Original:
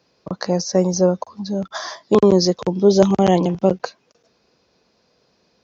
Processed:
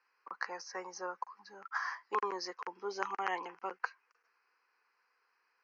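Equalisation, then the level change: Bessel high-pass 1000 Hz, order 4; air absorption 280 m; fixed phaser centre 1500 Hz, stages 4; 0.0 dB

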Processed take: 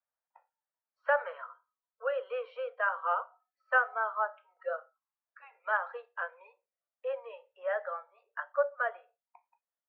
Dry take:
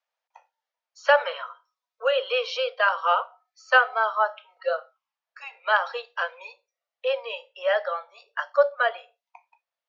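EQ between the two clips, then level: ladder low-pass 2000 Hz, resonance 35%; low shelf 410 Hz +7 dB; -5.0 dB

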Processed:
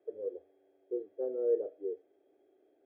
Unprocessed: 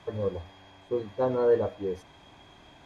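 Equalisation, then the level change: ladder band-pass 450 Hz, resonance 55%; fixed phaser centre 410 Hz, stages 4; 0.0 dB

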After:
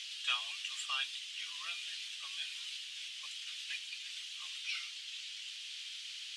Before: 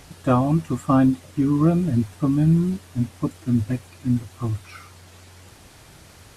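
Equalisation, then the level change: ladder high-pass 2700 Hz, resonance 60%; air absorption 120 m; high shelf 3600 Hz +8 dB; +13.5 dB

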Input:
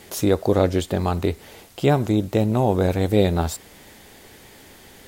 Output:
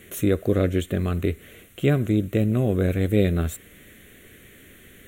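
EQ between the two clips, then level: fixed phaser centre 2100 Hz, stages 4; 0.0 dB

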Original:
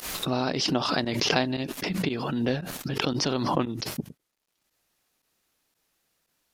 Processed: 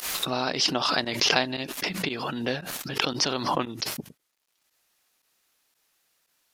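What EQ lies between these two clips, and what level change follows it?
low shelf 480 Hz -11 dB; +4.0 dB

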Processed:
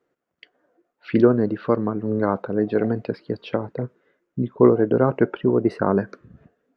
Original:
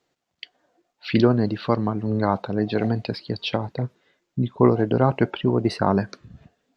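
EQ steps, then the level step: EQ curve 100 Hz 0 dB, 480 Hz +10 dB, 790 Hz 0 dB, 1400 Hz +7 dB, 4100 Hz -11 dB, 6500 Hz -8 dB; -5.0 dB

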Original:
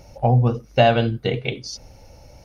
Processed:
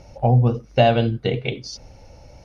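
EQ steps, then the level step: dynamic EQ 1400 Hz, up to -5 dB, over -32 dBFS, Q 1; air absorption 55 m; +1.0 dB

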